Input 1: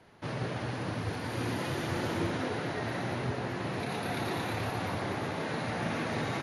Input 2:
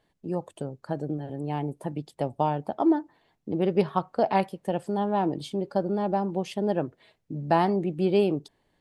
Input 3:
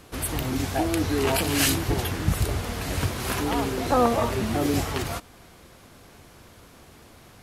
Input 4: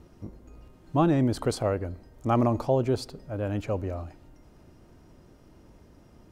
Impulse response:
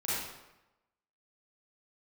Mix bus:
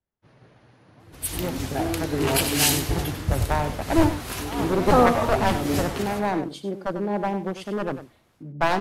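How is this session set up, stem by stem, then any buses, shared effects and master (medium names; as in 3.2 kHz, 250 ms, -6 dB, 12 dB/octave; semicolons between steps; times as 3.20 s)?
-6.5 dB, 0.00 s, no send, no echo send, none
+2.0 dB, 1.10 s, no send, echo send -10 dB, one-sided wavefolder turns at -20.5 dBFS
+0.5 dB, 1.00 s, no send, echo send -8.5 dB, random flutter of the level, depth 55%
-12.5 dB, 0.00 s, no send, no echo send, compression, threshold -30 dBFS, peak gain reduction 12 dB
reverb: none
echo: delay 97 ms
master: three bands expanded up and down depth 70%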